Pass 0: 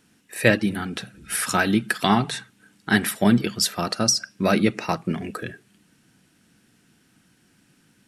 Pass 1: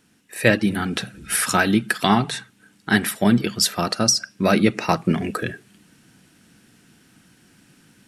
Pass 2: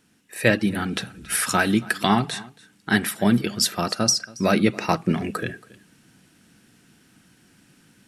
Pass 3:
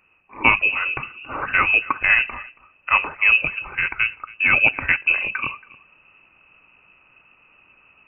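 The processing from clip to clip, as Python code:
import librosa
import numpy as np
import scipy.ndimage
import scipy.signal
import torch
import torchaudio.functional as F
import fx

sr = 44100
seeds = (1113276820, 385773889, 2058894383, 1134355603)

y1 = fx.rider(x, sr, range_db=3, speed_s=0.5)
y1 = y1 * 10.0 ** (3.0 / 20.0)
y2 = y1 + 10.0 ** (-22.0 / 20.0) * np.pad(y1, (int(277 * sr / 1000.0), 0))[:len(y1)]
y2 = y2 * 10.0 ** (-2.0 / 20.0)
y3 = fx.freq_invert(y2, sr, carrier_hz=2800)
y3 = y3 * 10.0 ** (2.5 / 20.0)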